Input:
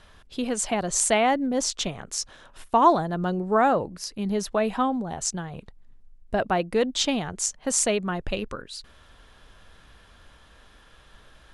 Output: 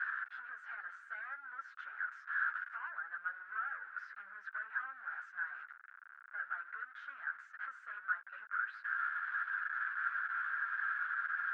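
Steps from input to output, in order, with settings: jump at every zero crossing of -29 dBFS; compression 4:1, threshold -31 dBFS, peak gain reduction 16 dB; overload inside the chain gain 32 dB; Butterworth band-pass 1.5 kHz, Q 5; three-phase chorus; trim +12 dB

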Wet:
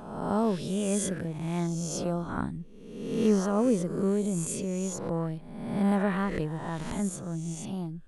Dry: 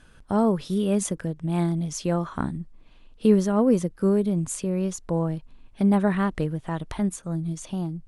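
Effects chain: reverse spectral sustain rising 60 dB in 1.05 s; 1.67–2.29 s: peaking EQ 1.8 kHz -13.5 dB 0.91 oct; trim -6 dB

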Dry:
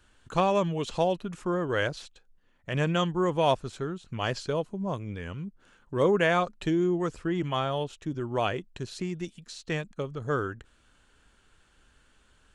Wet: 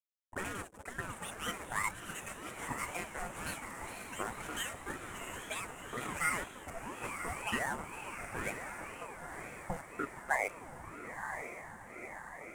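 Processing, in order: overload inside the chain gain 20.5 dB; tilt EQ -2 dB/octave; auto-wah 340–1700 Hz, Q 5.1, up, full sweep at -20.5 dBFS; on a send at -4 dB: reverberation RT60 0.25 s, pre-delay 5 ms; on the sum: hysteresis with a dead band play -38.5 dBFS; high-pass sweep 63 Hz -> 3.1 kHz, 9.41–10.68 s; echo that smears into a reverb 988 ms, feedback 64%, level -6.5 dB; ever faster or slower copies 181 ms, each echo +6 st, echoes 2, each echo -6 dB; resonant high shelf 6.1 kHz +13.5 dB, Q 3; ring modulator with a swept carrier 600 Hz, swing 45%, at 2 Hz; trim +5 dB

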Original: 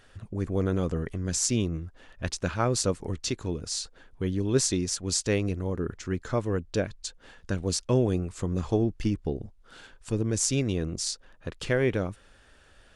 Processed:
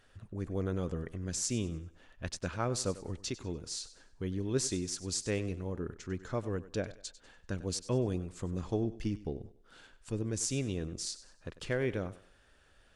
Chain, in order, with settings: thinning echo 97 ms, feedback 35%, high-pass 180 Hz, level -15.5 dB; trim -7.5 dB

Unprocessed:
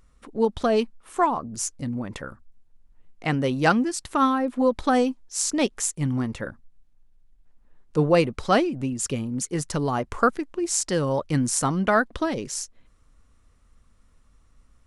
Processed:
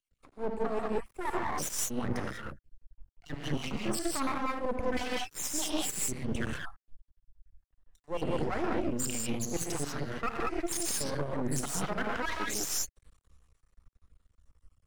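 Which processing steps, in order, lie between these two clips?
random holes in the spectrogram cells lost 56%; reverse; compression 12:1, threshold -32 dBFS, peak gain reduction 18.5 dB; reverse; gated-style reverb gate 220 ms rising, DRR -2 dB; peak limiter -25 dBFS, peak gain reduction 5.5 dB; half-wave rectifier; three bands expanded up and down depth 40%; trim +6 dB

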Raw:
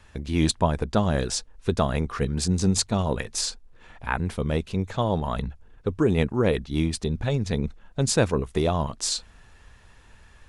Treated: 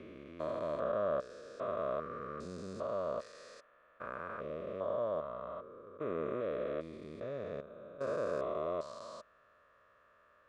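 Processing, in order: spectrogram pixelated in time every 400 ms; two resonant band-passes 840 Hz, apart 1 oct; trim +3.5 dB

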